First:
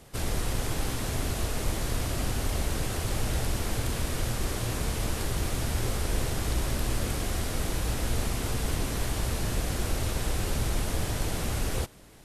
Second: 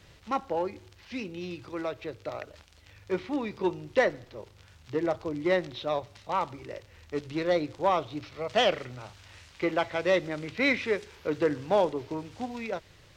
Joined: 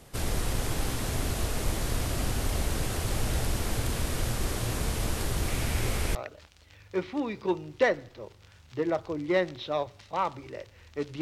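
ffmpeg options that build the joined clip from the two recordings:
ffmpeg -i cue0.wav -i cue1.wav -filter_complex "[0:a]asettb=1/sr,asplit=3[link_01][link_02][link_03];[link_01]atrim=end=5.484[link_04];[link_02]atrim=start=5.48:end=6.15,asetpts=PTS-STARTPTS,afade=type=in:duration=0.004:curve=qsin,afade=type=out:start_time=0.666:duration=0.004:curve=qsin,equalizer=frequency=2300:width=2.4:gain=6[link_05];[link_03]atrim=start=6.146[link_06];[link_04][link_05]acrossfade=duration=0.004:curve1=hsin:curve2=qsin[link_07];[link_07][link_06]acrossfade=duration=0.004:curve1=qsin:curve2=hsin,apad=whole_dur=11.21,atrim=end=11.21,atrim=end=6.152[link_08];[1:a]atrim=start=2.308:end=7.37[link_09];[link_08][link_09]acrossfade=duration=0.004:curve1=hsin:curve2=hsin" out.wav

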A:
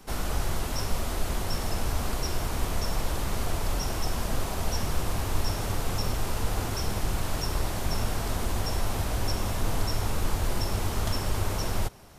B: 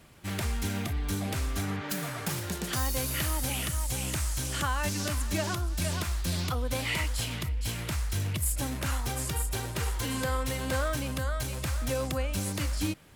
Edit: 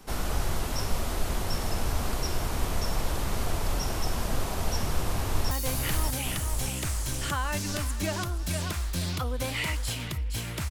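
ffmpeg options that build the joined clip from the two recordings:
ffmpeg -i cue0.wav -i cue1.wav -filter_complex "[0:a]apad=whole_dur=10.7,atrim=end=10.7,atrim=end=5.512[link_01];[1:a]atrim=start=2.818:end=8.01[link_02];[link_01][link_02]acrossfade=duration=0.004:curve1=hsin:curve2=hsin,asplit=2[link_03][link_04];[link_04]afade=type=in:start_time=5.07:duration=0.01,afade=type=out:start_time=5.51:duration=0.01,aecho=0:1:590|1180|1770|2360|2950|3540|4130|4720|5310|5900:0.562341|0.365522|0.237589|0.154433|0.100381|0.0652479|0.0424112|0.0275673|0.0179187|0.0116472[link_05];[link_03][link_05]amix=inputs=2:normalize=0" out.wav

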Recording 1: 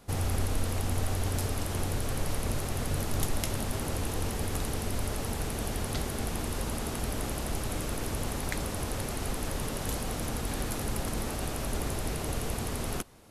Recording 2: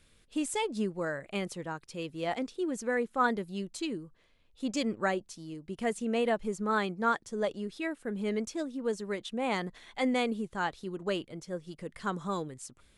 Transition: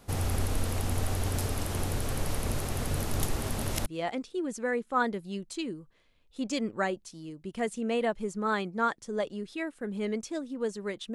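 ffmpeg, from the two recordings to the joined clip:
ffmpeg -i cue0.wav -i cue1.wav -filter_complex "[0:a]apad=whole_dur=11.14,atrim=end=11.14,asplit=2[link_01][link_02];[link_01]atrim=end=3.362[link_03];[link_02]atrim=start=3.358:end=3.862,asetpts=PTS-STARTPTS,areverse[link_04];[1:a]atrim=start=2.098:end=9.38[link_05];[link_03][link_04]acrossfade=duration=0.004:curve1=hsin:curve2=hsin[link_06];[link_06][link_05]acrossfade=duration=0.004:curve1=hsin:curve2=hsin" out.wav

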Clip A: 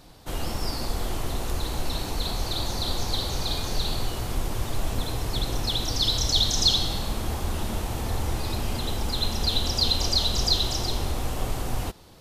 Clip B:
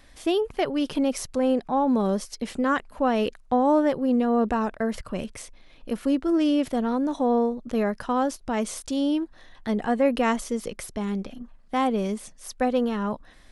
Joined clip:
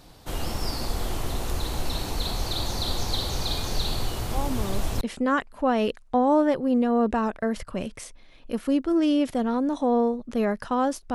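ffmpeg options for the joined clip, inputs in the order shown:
ffmpeg -i cue0.wav -i cue1.wav -filter_complex "[1:a]asplit=2[link_01][link_02];[0:a]apad=whole_dur=11.14,atrim=end=11.14,atrim=end=5.012[link_03];[link_02]atrim=start=2.388:end=8.52[link_04];[link_01]atrim=start=1.61:end=2.39,asetpts=PTS-STARTPTS,volume=-9.5dB,afade=type=in:duration=0.004:curve=hsin,afade=type=out:start_time=0.776:duration=0.004:curve=hsin,adelay=4230[link_05];[link_03][link_04]acrossfade=duration=0.004:curve1=hsin:curve2=hsin[link_06];[link_06][link_05]amix=inputs=2:normalize=0" out.wav

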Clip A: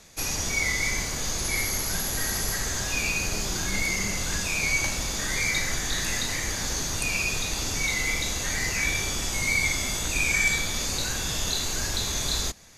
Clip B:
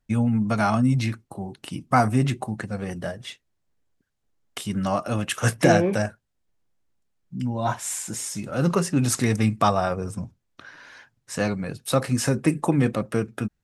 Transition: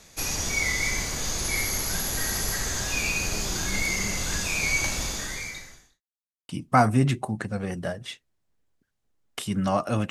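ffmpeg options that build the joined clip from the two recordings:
ffmpeg -i cue0.wav -i cue1.wav -filter_complex "[0:a]apad=whole_dur=10.1,atrim=end=10.1,asplit=2[link_01][link_02];[link_01]atrim=end=6.02,asetpts=PTS-STARTPTS,afade=type=out:start_time=5.05:duration=0.97:curve=qua[link_03];[link_02]atrim=start=6.02:end=6.49,asetpts=PTS-STARTPTS,volume=0[link_04];[1:a]atrim=start=1.68:end=5.29,asetpts=PTS-STARTPTS,afade=type=in:duration=0.004:curve=hsin[link_05];[link_03][link_04][link_05]concat=n=3:v=0:a=1" out.wav

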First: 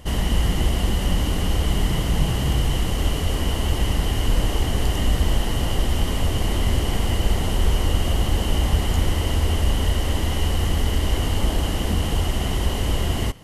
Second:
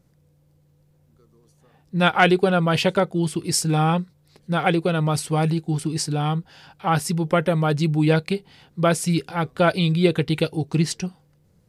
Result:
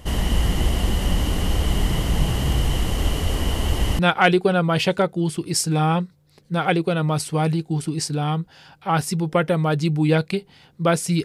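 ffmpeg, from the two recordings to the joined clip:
ffmpeg -i cue0.wav -i cue1.wav -filter_complex "[0:a]apad=whole_dur=11.24,atrim=end=11.24,atrim=end=3.992[link_01];[1:a]atrim=start=1.968:end=9.22[link_02];[link_01][link_02]acrossfade=duration=0.004:curve1=hsin:curve2=hsin" out.wav

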